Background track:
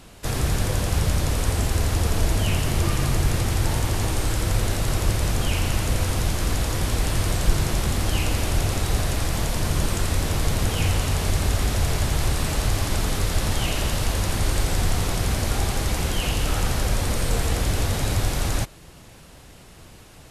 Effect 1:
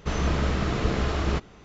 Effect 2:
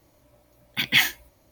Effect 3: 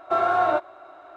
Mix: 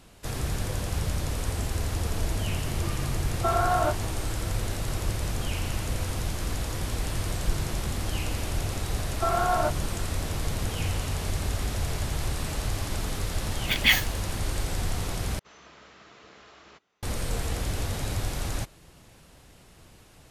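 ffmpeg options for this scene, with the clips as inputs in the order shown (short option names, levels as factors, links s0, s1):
-filter_complex "[3:a]asplit=2[s0][s1];[0:a]volume=0.447[s2];[1:a]highpass=f=980:p=1[s3];[s2]asplit=2[s4][s5];[s4]atrim=end=15.394[s6];[s3]atrim=end=1.64,asetpts=PTS-STARTPTS,volume=0.133[s7];[s5]atrim=start=17.026[s8];[s0]atrim=end=1.16,asetpts=PTS-STARTPTS,volume=0.631,afade=t=in:d=0.004:c=hsin,afade=t=out:st=1.156:d=0.004:c=hsin,adelay=146853S[s9];[s1]atrim=end=1.16,asetpts=PTS-STARTPTS,volume=0.596,afade=t=in:d=0.004:c=hsin,afade=t=out:st=1.156:d=0.004:c=hsin,adelay=9110[s10];[2:a]atrim=end=1.51,asetpts=PTS-STARTPTS,volume=0.841,afade=t=in:d=0.004:c=hsin,afade=t=out:st=1.506:d=0.004:c=hsin,adelay=12920[s11];[s6][s7]acrossfade=d=0.004:c1=hsin:c2=hsin[s12];[s12][s8]acrossfade=d=0.004:c1=hsin:c2=hsin[s13];[s13][s9][s10][s11]amix=inputs=4:normalize=0"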